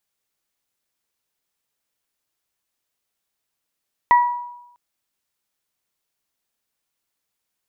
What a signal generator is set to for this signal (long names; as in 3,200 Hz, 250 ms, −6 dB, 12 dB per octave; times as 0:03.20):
harmonic partials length 0.65 s, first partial 969 Hz, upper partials −9 dB, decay 0.88 s, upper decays 0.39 s, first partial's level −8 dB